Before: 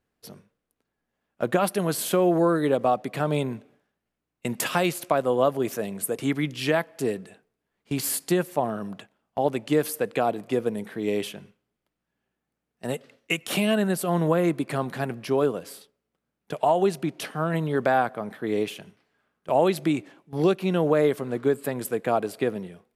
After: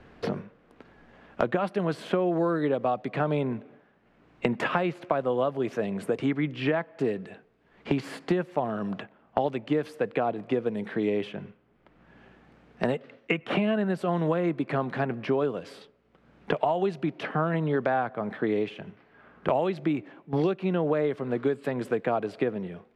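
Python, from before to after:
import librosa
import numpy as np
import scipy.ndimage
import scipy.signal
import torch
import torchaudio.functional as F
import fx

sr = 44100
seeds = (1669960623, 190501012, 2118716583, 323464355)

y = scipy.signal.sosfilt(scipy.signal.butter(2, 2800.0, 'lowpass', fs=sr, output='sos'), x)
y = fx.band_squash(y, sr, depth_pct=100)
y = y * 10.0 ** (-3.0 / 20.0)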